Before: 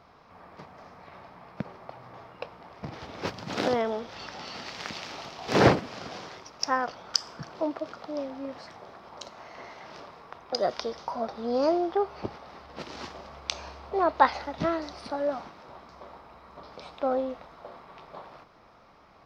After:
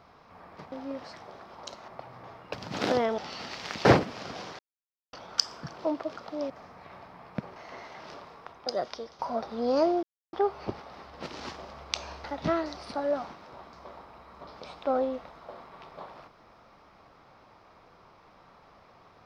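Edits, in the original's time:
0:00.72–0:01.78: swap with 0:08.26–0:09.42
0:02.43–0:03.29: remove
0:03.94–0:04.33: remove
0:05.00–0:05.61: remove
0:06.35–0:06.89: silence
0:10.13–0:11.05: fade out linear, to −9.5 dB
0:11.89: splice in silence 0.30 s
0:13.80–0:14.40: remove

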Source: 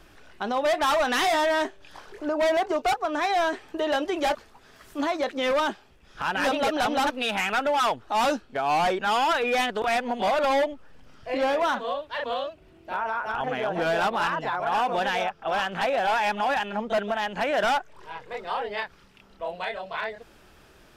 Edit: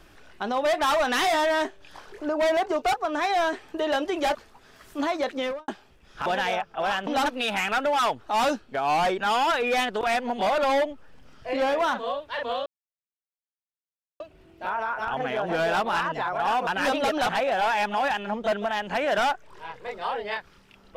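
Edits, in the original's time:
0:05.35–0:05.68: fade out and dull
0:06.26–0:06.88: swap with 0:14.94–0:15.75
0:12.47: splice in silence 1.54 s

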